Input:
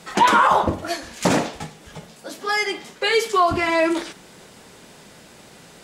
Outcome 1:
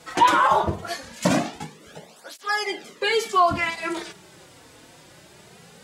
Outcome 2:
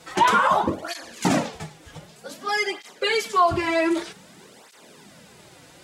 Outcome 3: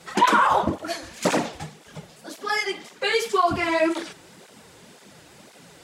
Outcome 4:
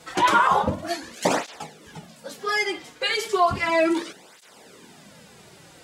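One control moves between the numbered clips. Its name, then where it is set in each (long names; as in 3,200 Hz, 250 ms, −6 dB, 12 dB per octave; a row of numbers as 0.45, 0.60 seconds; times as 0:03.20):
through-zero flanger with one copy inverted, nulls at: 0.21, 0.53, 1.9, 0.34 Hertz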